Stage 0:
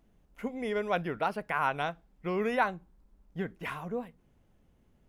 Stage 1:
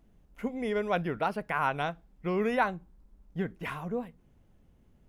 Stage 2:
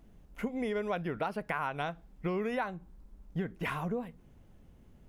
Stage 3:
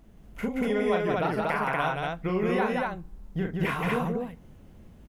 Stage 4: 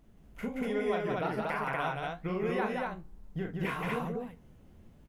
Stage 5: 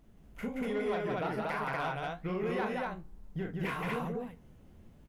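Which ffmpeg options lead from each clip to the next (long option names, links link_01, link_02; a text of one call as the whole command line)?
ffmpeg -i in.wav -af "lowshelf=frequency=290:gain=4.5" out.wav
ffmpeg -i in.wav -af "acompressor=threshold=-35dB:ratio=6,volume=4.5dB" out.wav
ffmpeg -i in.wav -af "aecho=1:1:37.9|174.9|239.1:0.631|0.708|0.891,volume=3.5dB" out.wav
ffmpeg -i in.wav -af "flanger=delay=6.7:depth=10:regen=60:speed=1.2:shape=sinusoidal,volume=-1.5dB" out.wav
ffmpeg -i in.wav -af "asoftclip=type=tanh:threshold=-25.5dB" out.wav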